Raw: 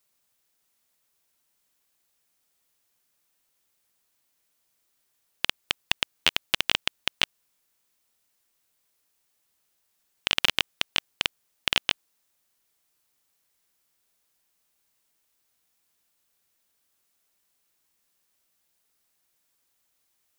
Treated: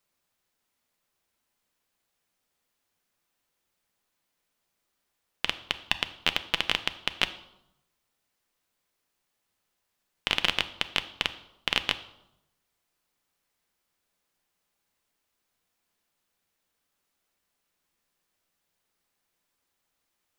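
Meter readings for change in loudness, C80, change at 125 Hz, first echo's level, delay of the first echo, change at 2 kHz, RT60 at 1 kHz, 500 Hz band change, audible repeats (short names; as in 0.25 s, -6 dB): -2.5 dB, 17.0 dB, +0.5 dB, none, none, -1.5 dB, 0.85 s, 0.0 dB, none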